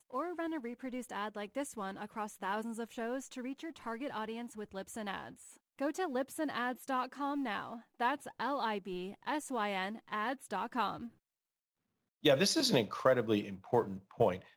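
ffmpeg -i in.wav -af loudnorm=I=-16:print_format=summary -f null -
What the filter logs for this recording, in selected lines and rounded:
Input Integrated:    -35.3 LUFS
Input True Peak:     -15.0 dBTP
Input LRA:             8.7 LU
Input Threshold:     -45.5 LUFS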